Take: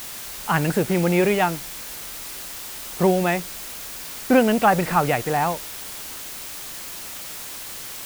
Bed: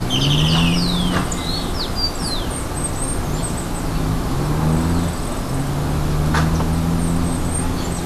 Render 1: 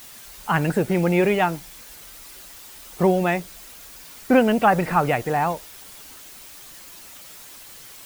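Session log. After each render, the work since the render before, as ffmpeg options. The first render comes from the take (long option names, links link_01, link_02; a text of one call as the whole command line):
ffmpeg -i in.wav -af "afftdn=noise_reduction=9:noise_floor=-35" out.wav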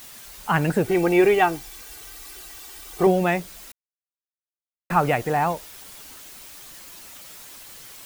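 ffmpeg -i in.wav -filter_complex "[0:a]asettb=1/sr,asplit=3[link_01][link_02][link_03];[link_01]atrim=end=0.844[link_04];[link_02]atrim=start=0.84:end=3.07,asetpts=PTS-STARTPTS,afade=type=in:duration=0.004:curve=qsin,afade=type=out:start_time=2.226:duration=0.004:curve=qsin,aecho=1:1:2.6:0.65,atrim=end_sample=98343[link_05];[link_03]atrim=start=3.066[link_06];[link_04][link_05]acrossfade=duration=0.004:curve1=hsin:curve2=qsin[link_07];[link_07][link_06]acrossfade=duration=0.004:curve1=qsin:curve2=hsin,asplit=3[link_08][link_09][link_10];[link_08]atrim=end=3.72,asetpts=PTS-STARTPTS,afade=type=out:start_time=3.716:duration=0.004:curve=hsin[link_11];[link_09]atrim=start=3.72:end=4.9,asetpts=PTS-STARTPTS,volume=0[link_12];[link_10]atrim=start=4.9,asetpts=PTS-STARTPTS,afade=type=in:duration=0.004:curve=hsin[link_13];[link_11][link_12][link_13]concat=n=3:v=0:a=1" out.wav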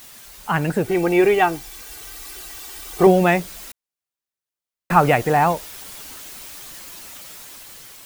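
ffmpeg -i in.wav -af "dynaudnorm=framelen=710:gausssize=5:maxgain=11.5dB" out.wav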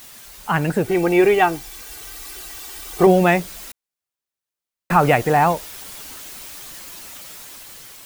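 ffmpeg -i in.wav -af "volume=1dB,alimiter=limit=-3dB:level=0:latency=1" out.wav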